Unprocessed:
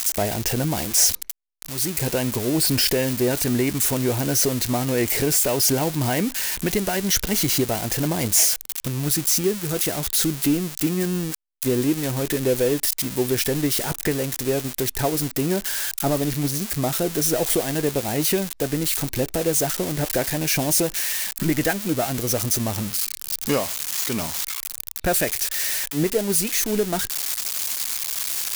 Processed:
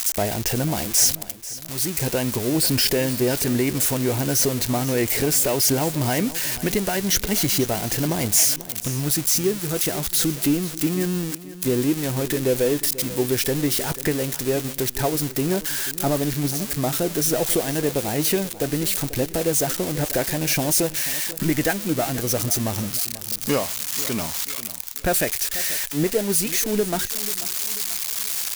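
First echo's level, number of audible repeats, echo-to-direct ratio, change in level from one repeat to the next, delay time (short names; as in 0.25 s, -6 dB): -16.0 dB, 3, -15.0 dB, -7.5 dB, 0.489 s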